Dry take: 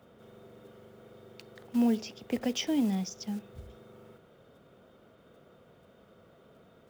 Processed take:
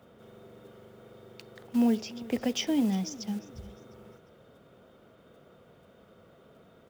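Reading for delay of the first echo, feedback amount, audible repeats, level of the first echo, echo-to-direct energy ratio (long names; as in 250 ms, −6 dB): 353 ms, 36%, 2, −19.0 dB, −18.5 dB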